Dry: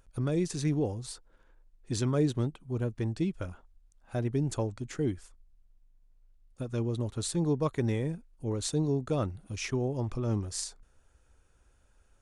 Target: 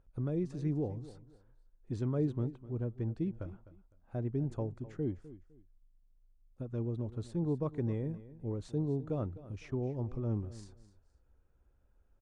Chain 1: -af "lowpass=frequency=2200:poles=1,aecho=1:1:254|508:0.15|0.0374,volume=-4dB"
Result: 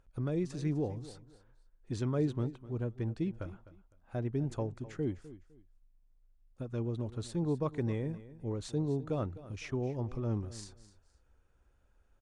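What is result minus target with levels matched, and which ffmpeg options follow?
2,000 Hz band +7.0 dB
-af "lowpass=frequency=620:poles=1,aecho=1:1:254|508:0.15|0.0374,volume=-4dB"

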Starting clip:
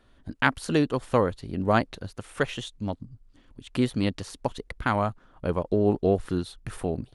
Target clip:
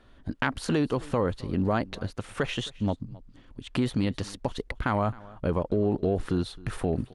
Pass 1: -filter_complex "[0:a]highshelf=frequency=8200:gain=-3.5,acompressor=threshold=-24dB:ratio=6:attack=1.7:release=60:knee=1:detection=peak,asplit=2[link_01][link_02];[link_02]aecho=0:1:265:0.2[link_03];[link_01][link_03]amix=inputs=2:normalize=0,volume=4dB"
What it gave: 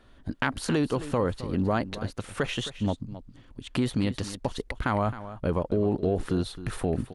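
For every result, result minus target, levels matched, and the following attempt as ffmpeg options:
echo-to-direct +7.5 dB; 8,000 Hz band +3.0 dB
-filter_complex "[0:a]highshelf=frequency=8200:gain=-3.5,acompressor=threshold=-24dB:ratio=6:attack=1.7:release=60:knee=1:detection=peak,asplit=2[link_01][link_02];[link_02]aecho=0:1:265:0.0841[link_03];[link_01][link_03]amix=inputs=2:normalize=0,volume=4dB"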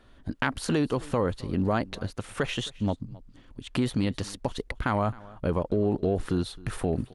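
8,000 Hz band +3.0 dB
-filter_complex "[0:a]highshelf=frequency=8200:gain=-10,acompressor=threshold=-24dB:ratio=6:attack=1.7:release=60:knee=1:detection=peak,asplit=2[link_01][link_02];[link_02]aecho=0:1:265:0.0841[link_03];[link_01][link_03]amix=inputs=2:normalize=0,volume=4dB"

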